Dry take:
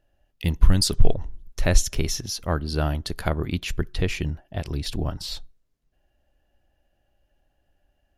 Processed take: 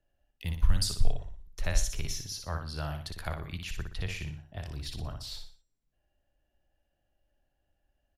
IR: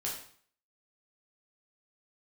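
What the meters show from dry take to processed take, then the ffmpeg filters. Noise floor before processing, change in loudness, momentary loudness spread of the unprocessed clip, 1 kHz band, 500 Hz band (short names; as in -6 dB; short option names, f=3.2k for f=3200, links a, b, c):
-72 dBFS, -9.5 dB, 11 LU, -9.5 dB, -14.0 dB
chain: -filter_complex "[0:a]bandreject=f=380:t=h:w=4,bandreject=f=760:t=h:w=4,bandreject=f=1.14k:t=h:w=4,bandreject=f=1.52k:t=h:w=4,bandreject=f=1.9k:t=h:w=4,bandreject=f=2.28k:t=h:w=4,bandreject=f=2.66k:t=h:w=4,bandreject=f=3.04k:t=h:w=4,bandreject=f=3.42k:t=h:w=4,bandreject=f=3.8k:t=h:w=4,bandreject=f=4.18k:t=h:w=4,bandreject=f=4.56k:t=h:w=4,bandreject=f=4.94k:t=h:w=4,bandreject=f=5.32k:t=h:w=4,bandreject=f=5.7k:t=h:w=4,bandreject=f=6.08k:t=h:w=4,bandreject=f=6.46k:t=h:w=4,bandreject=f=6.84k:t=h:w=4,bandreject=f=7.22k:t=h:w=4,bandreject=f=7.6k:t=h:w=4,bandreject=f=7.98k:t=h:w=4,bandreject=f=8.36k:t=h:w=4,bandreject=f=8.74k:t=h:w=4,bandreject=f=9.12k:t=h:w=4,acrossover=split=160|590|1600[a][b][c][d];[b]acompressor=threshold=-44dB:ratio=6[e];[a][e][c][d]amix=inputs=4:normalize=0,aecho=1:1:60|120|180|240:0.501|0.185|0.0686|0.0254,volume=-9dB"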